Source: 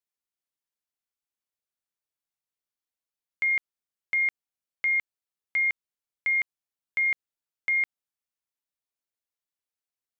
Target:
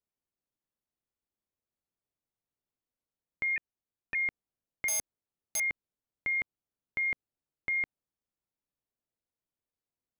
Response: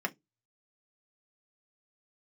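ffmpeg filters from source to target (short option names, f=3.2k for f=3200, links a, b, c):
-filter_complex "[0:a]asettb=1/sr,asplit=3[a][b][c];[a]atrim=end=3.564[d];[b]atrim=start=3.56:end=4.15,asetpts=PTS-STARTPTS,afade=t=in:d=0.004:c=qsin,afade=t=out:st=0.586:d=0.004:c=qsin,aeval=exprs='val(0)*sin(2*PI*320*n/s)':c=same[e];[c]atrim=start=4.146[f];[d][e]acrossfade=d=0.004:c1=hsin:c2=qsin[g];[g][f]acrossfade=d=0.004:c1=qsin:c2=hsin,tiltshelf=f=920:g=9,asettb=1/sr,asplit=3[h][i][j];[h]atrim=end=4.884[k];[i]atrim=start=4.88:end=5.6,asetpts=PTS-STARTPTS,afade=t=in:d=0.004:c=qsin,afade=t=out:st=0.716:d=0.004:c=qsin,aeval=exprs='(mod(22.4*val(0)+1,2)-1)/22.4':c=same[l];[j]atrim=start=5.596[m];[k][l]acrossfade=d=0.004:c1=hsin:c2=qsin[n];[n][m]acrossfade=d=0.004:c1=qsin:c2=hsin"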